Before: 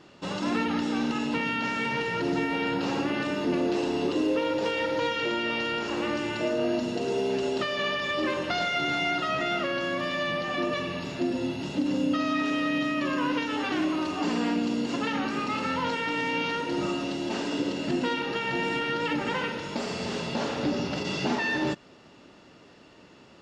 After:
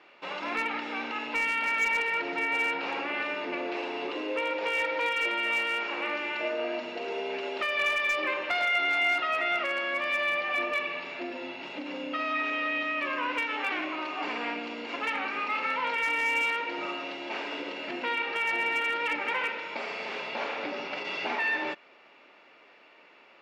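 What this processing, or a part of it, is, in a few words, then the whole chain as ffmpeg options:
megaphone: -af "highpass=590,lowpass=2900,equalizer=frequency=2300:width_type=o:width=0.27:gain=12,asoftclip=type=hard:threshold=-20.5dB"

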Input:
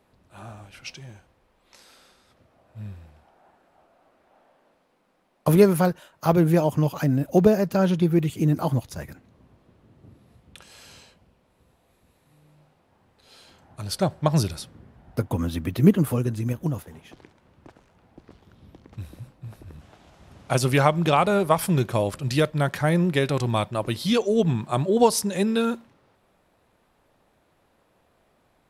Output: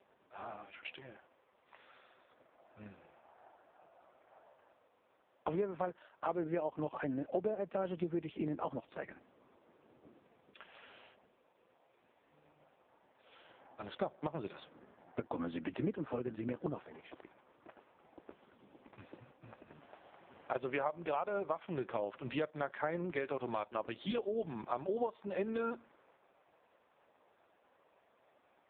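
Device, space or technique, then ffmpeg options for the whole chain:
voicemail: -filter_complex "[0:a]asplit=3[link_01][link_02][link_03];[link_01]afade=type=out:start_time=20.52:duration=0.02[link_04];[link_02]adynamicequalizer=threshold=0.0355:dfrequency=570:dqfactor=1.2:tfrequency=570:tqfactor=1.2:attack=5:release=100:ratio=0.375:range=2:mode=boostabove:tftype=bell,afade=type=in:start_time=20.52:duration=0.02,afade=type=out:start_time=21.23:duration=0.02[link_05];[link_03]afade=type=in:start_time=21.23:duration=0.02[link_06];[link_04][link_05][link_06]amix=inputs=3:normalize=0,highpass=370,lowpass=2900,acompressor=threshold=-34dB:ratio=6,volume=1dB" -ar 8000 -c:a libopencore_amrnb -b:a 4750

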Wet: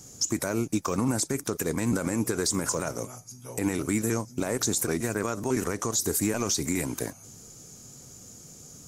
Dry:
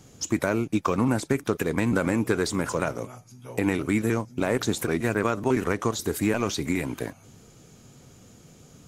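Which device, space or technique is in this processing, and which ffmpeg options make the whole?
over-bright horn tweeter: -af "highshelf=frequency=4400:width_type=q:width=1.5:gain=10,alimiter=limit=-15dB:level=0:latency=1:release=69,volume=-1dB"

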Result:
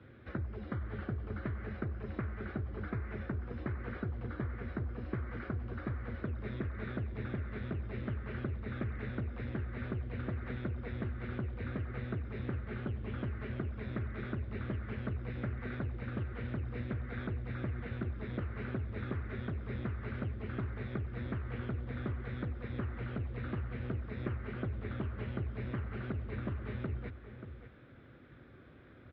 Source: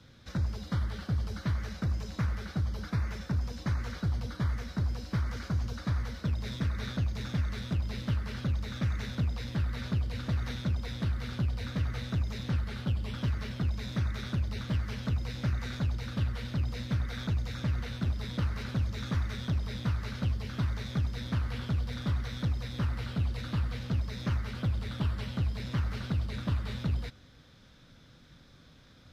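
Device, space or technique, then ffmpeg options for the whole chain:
bass amplifier: -filter_complex "[0:a]acompressor=threshold=-35dB:ratio=6,highpass=65,equalizer=frequency=170:width_type=q:width=4:gain=-8,equalizer=frequency=370:width_type=q:width=4:gain=9,equalizer=frequency=940:width_type=q:width=4:gain=-5,lowpass=frequency=2300:width=0.5412,lowpass=frequency=2300:width=1.3066,asplit=2[link_01][link_02];[link_02]adelay=583.1,volume=-10dB,highshelf=frequency=4000:gain=-13.1[link_03];[link_01][link_03]amix=inputs=2:normalize=0,volume=2dB"

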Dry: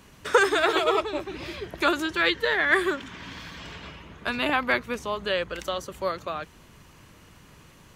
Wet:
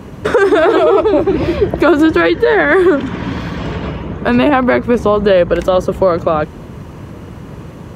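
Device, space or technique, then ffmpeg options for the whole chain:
mastering chain: -af "highpass=60,equalizer=frequency=500:width_type=o:width=0.77:gain=2,acompressor=threshold=-26dB:ratio=2,tiltshelf=frequency=1300:gain=9.5,alimiter=level_in=16dB:limit=-1dB:release=50:level=0:latency=1,volume=-1dB"

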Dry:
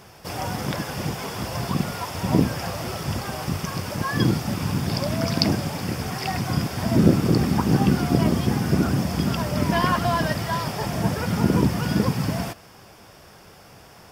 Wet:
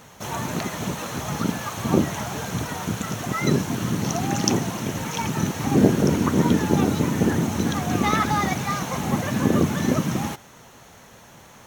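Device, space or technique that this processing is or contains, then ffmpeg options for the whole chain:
nightcore: -af "asetrate=53361,aresample=44100"

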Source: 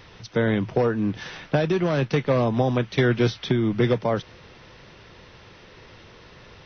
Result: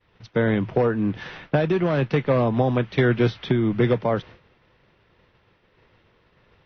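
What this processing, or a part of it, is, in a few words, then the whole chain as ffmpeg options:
hearing-loss simulation: -af "lowpass=3200,agate=range=-33dB:threshold=-38dB:ratio=3:detection=peak,volume=1dB"

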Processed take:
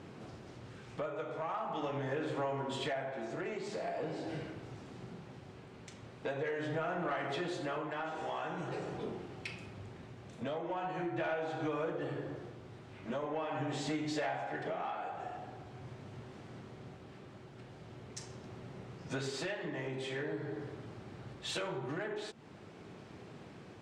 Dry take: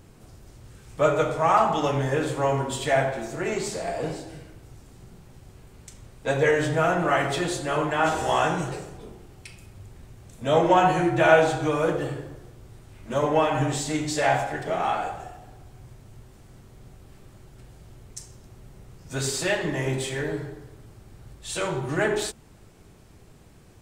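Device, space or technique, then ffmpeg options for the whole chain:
AM radio: -af "highpass=190,lowpass=3800,equalizer=frequency=96:width_type=o:width=1.9:gain=3.5,acompressor=threshold=-37dB:ratio=8,asoftclip=type=tanh:threshold=-30dB,tremolo=f=0.43:d=0.33,volume=4.5dB"

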